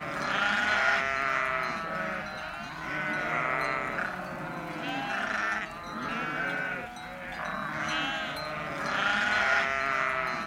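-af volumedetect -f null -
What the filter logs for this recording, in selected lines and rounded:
mean_volume: -30.8 dB
max_volume: -11.4 dB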